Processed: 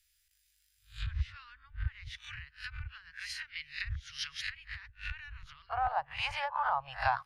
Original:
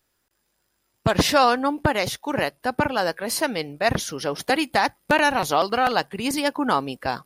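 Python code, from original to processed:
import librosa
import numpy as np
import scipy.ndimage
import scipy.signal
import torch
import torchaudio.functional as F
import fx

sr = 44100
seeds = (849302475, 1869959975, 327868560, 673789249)

y = fx.spec_swells(x, sr, rise_s=0.31)
y = fx.env_lowpass_down(y, sr, base_hz=590.0, full_db=-17.0)
y = fx.cheby2_bandstop(y, sr, low_hz=200.0, high_hz=fx.steps((0.0, 770.0), (5.69, 400.0)), order=4, stop_db=60)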